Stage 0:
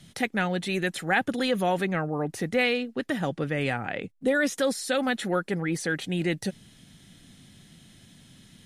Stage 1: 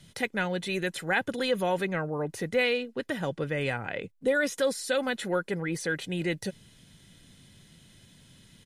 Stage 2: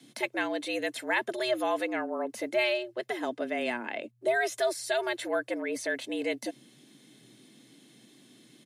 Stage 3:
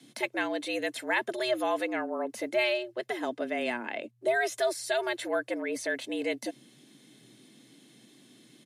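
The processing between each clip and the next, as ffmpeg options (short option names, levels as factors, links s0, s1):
-af "aecho=1:1:2:0.33,volume=0.75"
-af "afreqshift=120,volume=0.841"
-af "aresample=32000,aresample=44100"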